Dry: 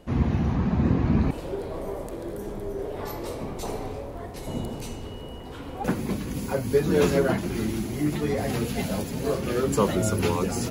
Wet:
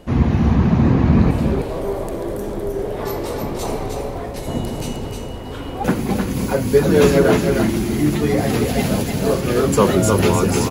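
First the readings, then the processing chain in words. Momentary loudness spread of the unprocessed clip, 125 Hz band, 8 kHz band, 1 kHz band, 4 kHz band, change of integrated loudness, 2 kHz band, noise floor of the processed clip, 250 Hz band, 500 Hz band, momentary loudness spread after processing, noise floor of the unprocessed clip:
13 LU, +8.5 dB, +8.5 dB, +8.5 dB, +8.5 dB, +8.5 dB, +8.5 dB, -29 dBFS, +8.5 dB, +8.5 dB, 12 LU, -38 dBFS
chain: delay 308 ms -5 dB; trim +7.5 dB

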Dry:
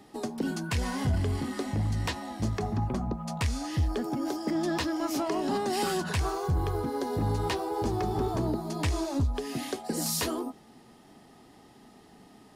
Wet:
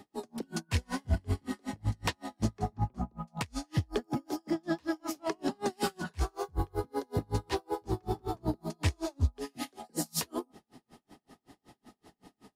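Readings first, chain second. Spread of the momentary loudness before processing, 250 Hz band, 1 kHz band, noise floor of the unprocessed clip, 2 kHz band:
4 LU, -5.0 dB, -5.0 dB, -55 dBFS, -4.0 dB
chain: logarithmic tremolo 5.3 Hz, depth 39 dB; trim +2.5 dB

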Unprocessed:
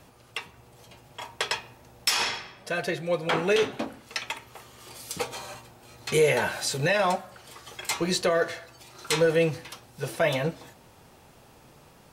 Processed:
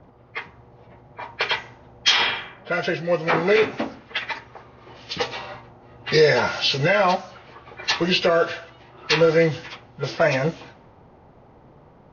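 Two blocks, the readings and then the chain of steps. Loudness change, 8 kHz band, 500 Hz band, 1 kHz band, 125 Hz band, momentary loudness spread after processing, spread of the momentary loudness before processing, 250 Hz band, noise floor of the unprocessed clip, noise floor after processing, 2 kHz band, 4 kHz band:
+6.0 dB, -4.0 dB, +5.0 dB, +6.0 dB, +5.0 dB, 18 LU, 20 LU, +5.0 dB, -55 dBFS, -51 dBFS, +6.0 dB, +7.5 dB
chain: knee-point frequency compression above 1.2 kHz 1.5:1; treble shelf 3.3 kHz +8 dB; level-controlled noise filter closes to 900 Hz, open at -23.5 dBFS; trim +5 dB

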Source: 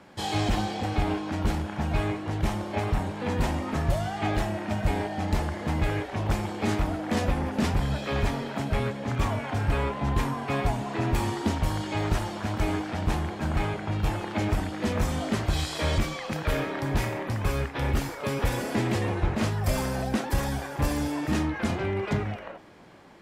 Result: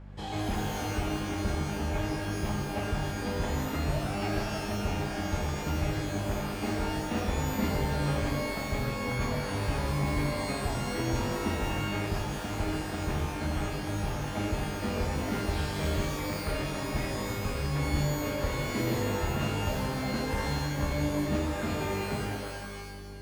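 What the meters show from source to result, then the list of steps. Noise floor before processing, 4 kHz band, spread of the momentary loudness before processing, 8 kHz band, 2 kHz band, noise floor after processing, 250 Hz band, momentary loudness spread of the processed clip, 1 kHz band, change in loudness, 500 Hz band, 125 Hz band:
-38 dBFS, -1.5 dB, 3 LU, 0.0 dB, -2.0 dB, -36 dBFS, -3.0 dB, 3 LU, -3.5 dB, -3.0 dB, -2.5 dB, -3.5 dB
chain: hum 50 Hz, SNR 11 dB; treble shelf 4.3 kHz -11 dB; pitch-shifted reverb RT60 1.1 s, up +12 st, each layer -2 dB, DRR 3 dB; trim -7 dB

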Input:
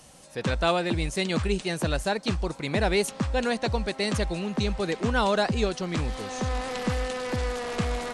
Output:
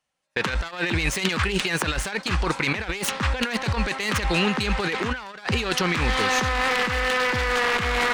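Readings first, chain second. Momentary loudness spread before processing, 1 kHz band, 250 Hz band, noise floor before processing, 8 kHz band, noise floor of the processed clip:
6 LU, +4.5 dB, +0.5 dB, -47 dBFS, +6.0 dB, -43 dBFS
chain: self-modulated delay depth 0.17 ms; peaking EQ 1.9 kHz +14 dB 2.8 oct; compressor with a negative ratio -26 dBFS, ratio -1; dynamic bell 640 Hz, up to -7 dB, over -44 dBFS, Q 3.6; gate -31 dBFS, range -41 dB; trim +2 dB

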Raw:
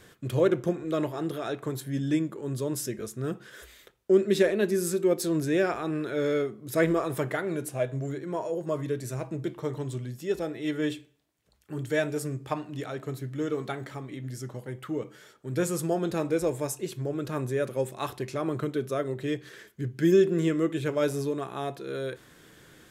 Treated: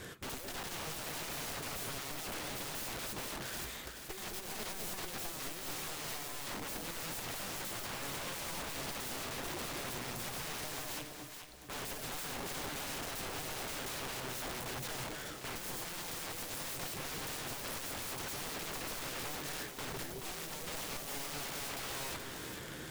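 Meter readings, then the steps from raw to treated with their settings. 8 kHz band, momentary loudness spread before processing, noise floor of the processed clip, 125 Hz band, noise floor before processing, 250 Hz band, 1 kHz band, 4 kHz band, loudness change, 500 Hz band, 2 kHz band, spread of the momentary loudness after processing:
+0.5 dB, 12 LU, -47 dBFS, -16.0 dB, -58 dBFS, -19.0 dB, -5.5 dB, +2.5 dB, -10.5 dB, -19.5 dB, -4.5 dB, 3 LU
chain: valve stage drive 33 dB, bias 0.4; integer overflow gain 45.5 dB; echo whose repeats swap between lows and highs 214 ms, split 800 Hz, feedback 64%, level -3 dB; trim +8 dB

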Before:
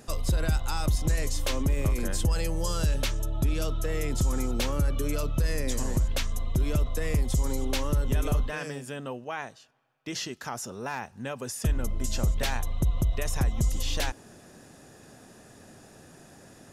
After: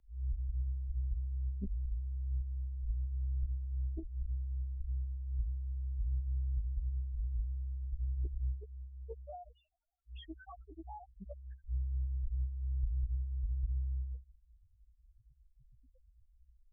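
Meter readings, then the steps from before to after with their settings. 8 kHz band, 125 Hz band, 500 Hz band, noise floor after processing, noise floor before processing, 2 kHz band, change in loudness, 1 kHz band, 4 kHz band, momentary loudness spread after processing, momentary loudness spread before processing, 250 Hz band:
under -40 dB, -8.5 dB, -23.5 dB, -69 dBFS, -53 dBFS, -32.0 dB, -9.5 dB, -19.5 dB, -30.0 dB, 13 LU, 8 LU, -21.5 dB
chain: peak limiter -23.5 dBFS, peak gain reduction 6 dB; monotone LPC vocoder at 8 kHz 130 Hz; loudest bins only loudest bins 1; frequency shift -65 Hz; loudspeaker Doppler distortion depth 0.83 ms

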